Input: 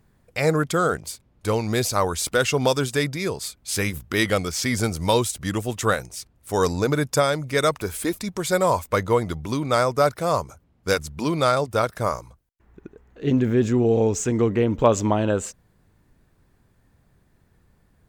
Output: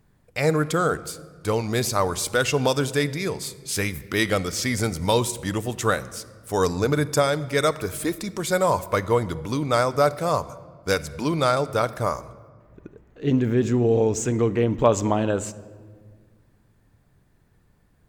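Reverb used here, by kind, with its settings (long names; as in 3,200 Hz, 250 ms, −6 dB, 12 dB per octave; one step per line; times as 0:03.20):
rectangular room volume 2,200 cubic metres, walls mixed, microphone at 0.38 metres
level −1 dB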